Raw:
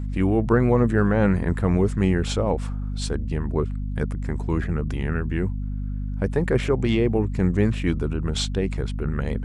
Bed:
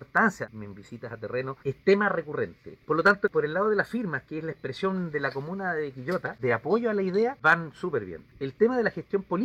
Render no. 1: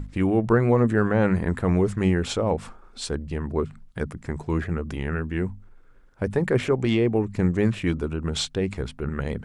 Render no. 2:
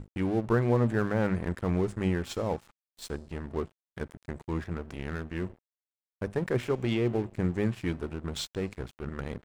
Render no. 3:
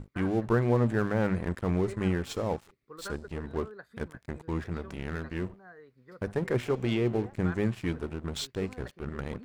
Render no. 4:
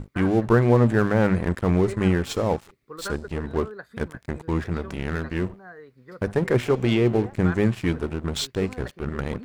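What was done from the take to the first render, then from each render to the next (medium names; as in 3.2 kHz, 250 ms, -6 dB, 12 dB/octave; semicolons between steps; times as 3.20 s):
hum notches 50/100/150/200/250 Hz
feedback comb 120 Hz, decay 0.95 s, harmonics odd, mix 50%; crossover distortion -42 dBFS
add bed -22 dB
trim +7.5 dB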